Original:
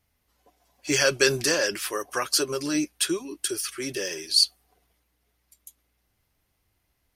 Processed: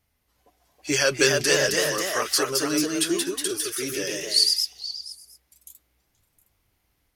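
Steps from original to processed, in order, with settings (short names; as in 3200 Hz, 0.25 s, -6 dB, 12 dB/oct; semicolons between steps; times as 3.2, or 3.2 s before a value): echoes that change speed 0.348 s, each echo +1 st, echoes 2; delay with a stepping band-pass 0.238 s, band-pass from 1600 Hz, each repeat 1.4 oct, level -10.5 dB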